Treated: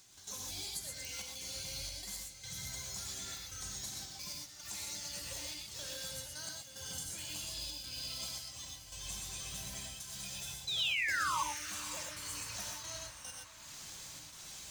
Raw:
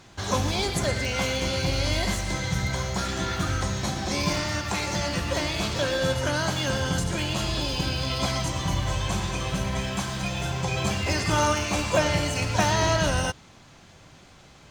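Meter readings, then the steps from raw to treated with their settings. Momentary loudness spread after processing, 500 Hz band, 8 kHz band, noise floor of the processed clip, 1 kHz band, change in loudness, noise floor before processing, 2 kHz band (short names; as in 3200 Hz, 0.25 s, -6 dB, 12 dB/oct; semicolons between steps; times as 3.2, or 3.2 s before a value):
11 LU, -27.0 dB, -7.0 dB, -53 dBFS, -16.0 dB, -13.5 dB, -51 dBFS, -12.5 dB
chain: pre-emphasis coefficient 0.8; reverb removal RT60 0.59 s; high shelf 4000 Hz +11.5 dB; compressor 4:1, threshold -53 dBFS, peak gain reduction 27 dB; step gate "..xxxxxxx.xxxx.x" 111 bpm -12 dB; painted sound fall, 10.67–11.41, 860–4100 Hz -42 dBFS; on a send: diffused feedback echo 0.533 s, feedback 67%, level -16 dB; on the sum: non-linear reverb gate 0.15 s rising, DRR 0.5 dB; gain +5.5 dB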